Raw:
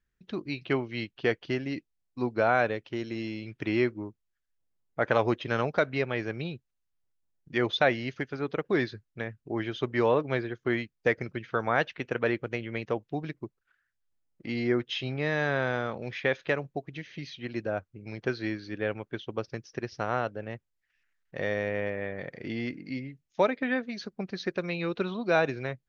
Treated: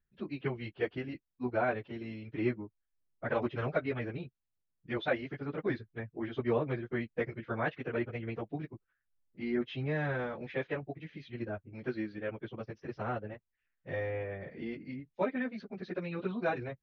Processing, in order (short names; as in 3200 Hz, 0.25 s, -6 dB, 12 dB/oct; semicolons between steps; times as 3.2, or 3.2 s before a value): LPF 3000 Hz 12 dB/oct; low shelf 350 Hz +4.5 dB; plain phase-vocoder stretch 0.65×; gain -4 dB